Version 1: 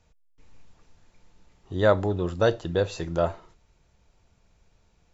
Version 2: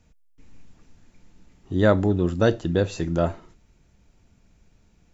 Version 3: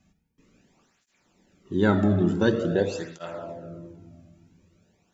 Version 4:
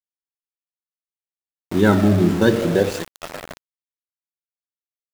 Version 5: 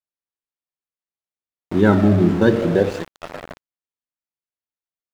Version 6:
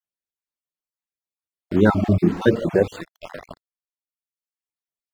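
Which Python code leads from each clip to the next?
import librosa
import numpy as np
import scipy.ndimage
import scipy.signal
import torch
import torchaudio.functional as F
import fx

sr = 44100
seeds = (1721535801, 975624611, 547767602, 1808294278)

y1 = fx.graphic_eq(x, sr, hz=(250, 500, 1000, 4000), db=(7, -4, -5, -4))
y1 = F.gain(torch.from_numpy(y1), 4.0).numpy()
y2 = fx.room_shoebox(y1, sr, seeds[0], volume_m3=2300.0, walls='mixed', distance_m=1.1)
y2 = fx.flanger_cancel(y2, sr, hz=0.47, depth_ms=2.2)
y3 = np.where(np.abs(y2) >= 10.0 ** (-31.0 / 20.0), y2, 0.0)
y3 = F.gain(torch.from_numpy(y3), 6.0).numpy()
y4 = fx.lowpass(y3, sr, hz=2100.0, slope=6)
y4 = F.gain(torch.from_numpy(y4), 1.0).numpy()
y5 = fx.spec_dropout(y4, sr, seeds[1], share_pct=36)
y5 = fx.dereverb_blind(y5, sr, rt60_s=0.97)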